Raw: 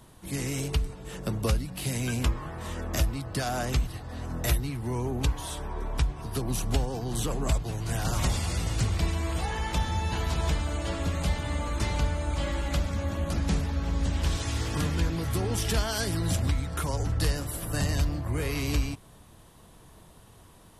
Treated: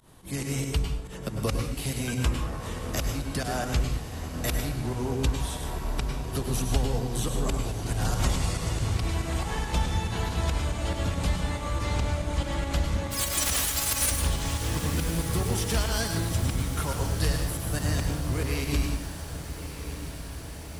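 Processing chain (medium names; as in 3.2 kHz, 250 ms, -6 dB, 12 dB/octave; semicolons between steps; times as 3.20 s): 13.10–14.10 s: formants flattened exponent 0.1; volume shaper 140 bpm, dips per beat 2, -18 dB, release 117 ms; on a send: echo that smears into a reverb 1234 ms, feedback 72%, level -11.5 dB; on the sum: plate-style reverb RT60 0.54 s, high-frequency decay 0.85×, pre-delay 90 ms, DRR 4 dB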